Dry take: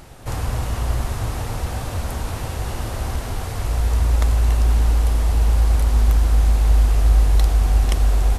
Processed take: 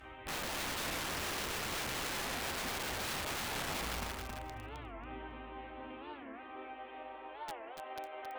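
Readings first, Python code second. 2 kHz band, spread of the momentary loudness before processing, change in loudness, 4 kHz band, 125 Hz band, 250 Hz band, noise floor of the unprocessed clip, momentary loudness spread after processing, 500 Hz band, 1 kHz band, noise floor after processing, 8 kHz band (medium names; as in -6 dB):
-4.5 dB, 10 LU, -19.0 dB, -4.5 dB, -31.0 dB, -13.5 dB, -28 dBFS, 11 LU, -11.5 dB, -9.5 dB, -50 dBFS, -8.5 dB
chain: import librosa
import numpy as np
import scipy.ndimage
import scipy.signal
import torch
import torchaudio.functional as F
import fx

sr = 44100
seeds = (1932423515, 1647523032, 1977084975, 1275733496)

p1 = fx.delta_mod(x, sr, bps=16000, step_db=-33.5)
p2 = fx.peak_eq(p1, sr, hz=200.0, db=-5.0, octaves=0.42)
p3 = fx.over_compress(p2, sr, threshold_db=-21.0, ratio=-0.5)
p4 = p2 + (p3 * librosa.db_to_amplitude(2.0))
p5 = fx.filter_sweep_highpass(p4, sr, from_hz=63.0, to_hz=550.0, start_s=3.56, end_s=7.37, q=1.7)
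p6 = fx.cheby_harmonics(p5, sr, harmonics=(7,), levels_db=(-28,), full_scale_db=0.5)
p7 = fx.resonator_bank(p6, sr, root=60, chord='minor', decay_s=0.56)
p8 = fx.rev_schroeder(p7, sr, rt60_s=2.2, comb_ms=29, drr_db=10.0)
p9 = (np.mod(10.0 ** (39.0 / 20.0) * p8 + 1.0, 2.0) - 1.0) / 10.0 ** (39.0 / 20.0)
p10 = fx.echo_feedback(p9, sr, ms=271, feedback_pct=15, wet_db=-5.5)
p11 = fx.record_warp(p10, sr, rpm=45.0, depth_cents=250.0)
y = p11 * librosa.db_to_amplitude(4.5)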